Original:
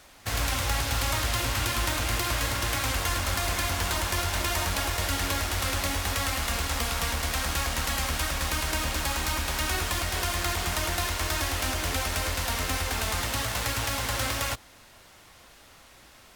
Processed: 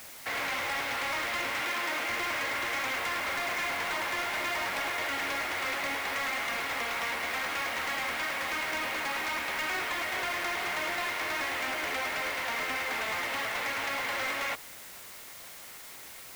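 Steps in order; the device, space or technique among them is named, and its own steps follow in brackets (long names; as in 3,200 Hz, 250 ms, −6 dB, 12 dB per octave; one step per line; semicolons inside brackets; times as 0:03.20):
drive-through speaker (band-pass filter 360–2,900 Hz; parametric band 2,100 Hz +8 dB 0.35 octaves; hard clipping −28.5 dBFS, distortion −12 dB; white noise bed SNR 14 dB)
0:01.61–0:02.09: high-pass filter 170 Hz 12 dB per octave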